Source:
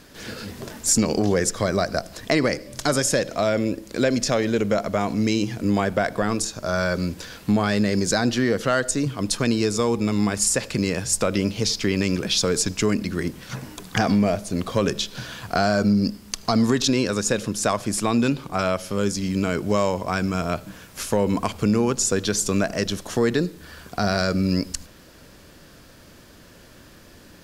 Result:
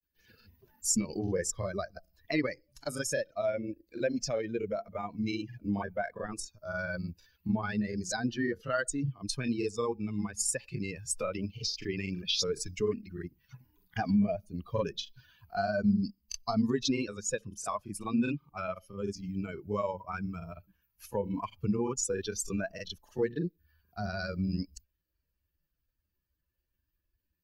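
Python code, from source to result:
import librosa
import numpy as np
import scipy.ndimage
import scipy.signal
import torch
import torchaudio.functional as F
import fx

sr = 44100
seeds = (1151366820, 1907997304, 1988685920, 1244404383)

y = fx.bin_expand(x, sr, power=2.0)
y = fx.granulator(y, sr, seeds[0], grain_ms=100.0, per_s=20.0, spray_ms=26.0, spread_st=0)
y = y * 10.0 ** (-4.0 / 20.0)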